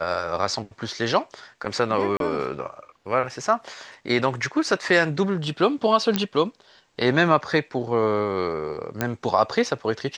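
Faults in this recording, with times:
2.17–2.20 s: dropout 32 ms
6.16 s: pop -7 dBFS
9.01 s: pop -8 dBFS

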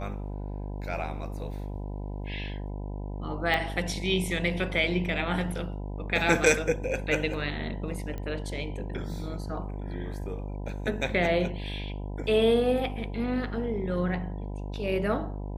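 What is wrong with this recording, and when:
buzz 50 Hz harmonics 20 -35 dBFS
3.54 s: pop -15 dBFS
8.18 s: pop -24 dBFS

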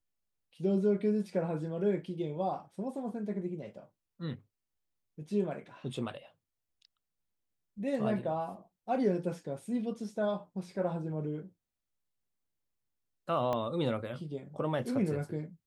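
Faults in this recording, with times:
13.53 s: pop -21 dBFS

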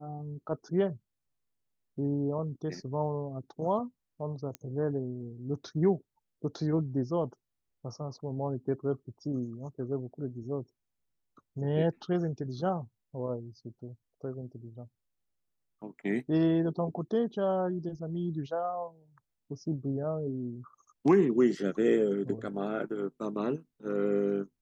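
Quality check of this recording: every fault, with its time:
4.55 s: pop -22 dBFS

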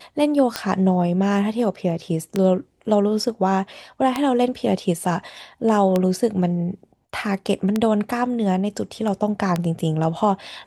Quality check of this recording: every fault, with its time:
tick 33 1/3 rpm -7 dBFS

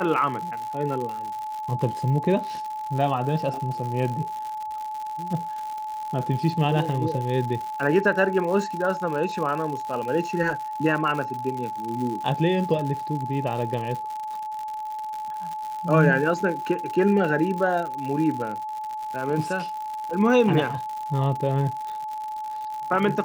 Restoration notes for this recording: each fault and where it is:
crackle 120 per s -30 dBFS
whine 860 Hz -29 dBFS

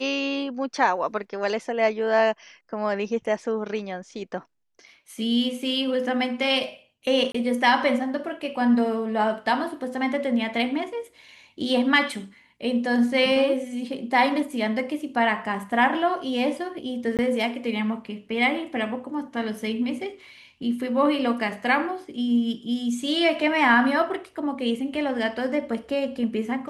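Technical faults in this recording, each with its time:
7.32–7.34 s: dropout 24 ms
17.17–17.19 s: dropout 18 ms

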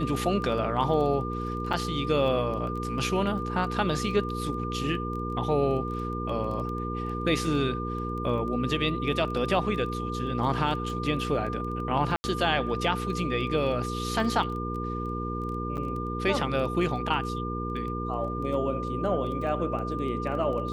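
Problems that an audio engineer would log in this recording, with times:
crackle 12 per s -35 dBFS
hum 60 Hz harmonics 8 -33 dBFS
whine 1.2 kHz -34 dBFS
1.73 s: dropout 4.3 ms
12.16–12.24 s: dropout 80 ms
15.77–15.78 s: dropout 6.3 ms

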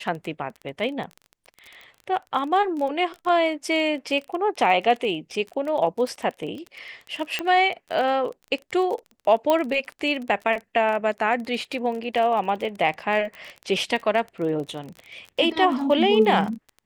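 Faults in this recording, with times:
crackle 25 per s -30 dBFS
7.39 s: pop -11 dBFS
9.50 s: pop -8 dBFS

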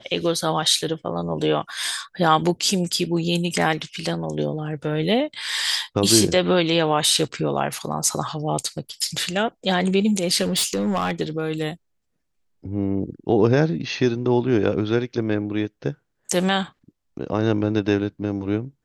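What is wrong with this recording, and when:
10.42–11.20 s: clipped -17 dBFS

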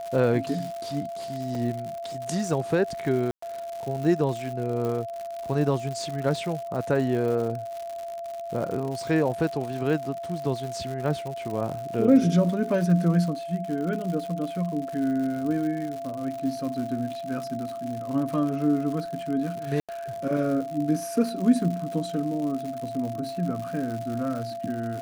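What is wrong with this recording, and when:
crackle 150 per s -32 dBFS
whine 680 Hz -32 dBFS
1.55 s: dropout 2.2 ms
3.31–3.42 s: dropout 114 ms
4.85 s: pop
19.80–19.89 s: dropout 86 ms

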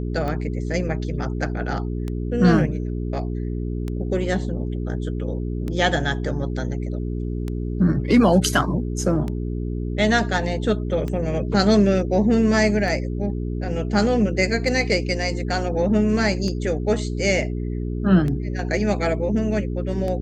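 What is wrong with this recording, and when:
hum 60 Hz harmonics 7 -26 dBFS
tick 33 1/3 rpm -17 dBFS

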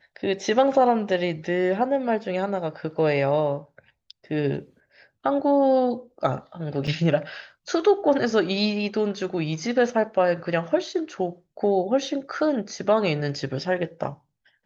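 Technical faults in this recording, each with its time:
6.87 s: dropout 4.9 ms

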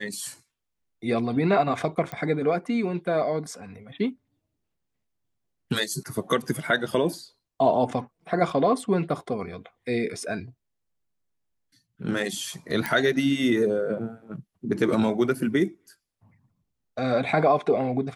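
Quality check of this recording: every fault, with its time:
2.12 s: pop -19 dBFS
12.86 s: pop -12 dBFS

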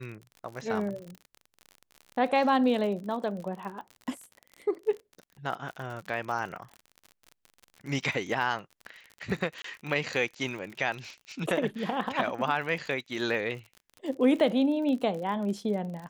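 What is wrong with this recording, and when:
crackle 47 per s -36 dBFS
9.62–9.64 s: dropout 23 ms

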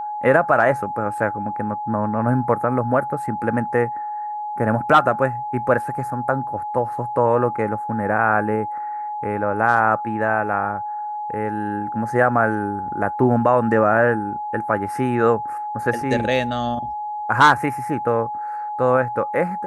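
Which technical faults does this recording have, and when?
whine 840 Hz -25 dBFS

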